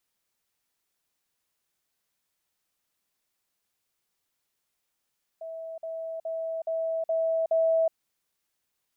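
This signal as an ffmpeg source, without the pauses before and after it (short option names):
-f lavfi -i "aevalsrc='pow(10,(-35+3*floor(t/0.42))/20)*sin(2*PI*652*t)*clip(min(mod(t,0.42),0.37-mod(t,0.42))/0.005,0,1)':d=2.52:s=44100"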